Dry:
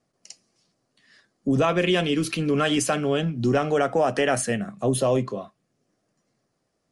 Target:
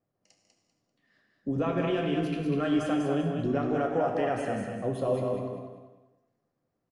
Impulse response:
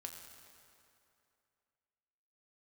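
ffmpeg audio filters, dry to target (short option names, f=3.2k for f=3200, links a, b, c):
-filter_complex "[0:a]lowpass=f=1.1k:p=1,aecho=1:1:196|392|588|784:0.596|0.185|0.0572|0.0177[a];[1:a]atrim=start_sample=2205,afade=t=out:st=0.39:d=0.01,atrim=end_sample=17640,asetrate=52920,aresample=44100[b];[a][b]afir=irnorm=-1:irlink=0"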